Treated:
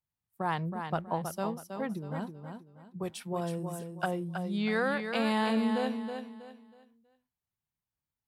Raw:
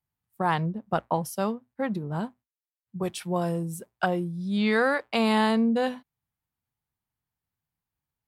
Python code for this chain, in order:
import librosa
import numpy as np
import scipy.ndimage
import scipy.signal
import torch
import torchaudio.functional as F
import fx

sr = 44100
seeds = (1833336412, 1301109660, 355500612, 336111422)

y = fx.echo_feedback(x, sr, ms=321, feedback_pct=31, wet_db=-7.0)
y = y * librosa.db_to_amplitude(-6.5)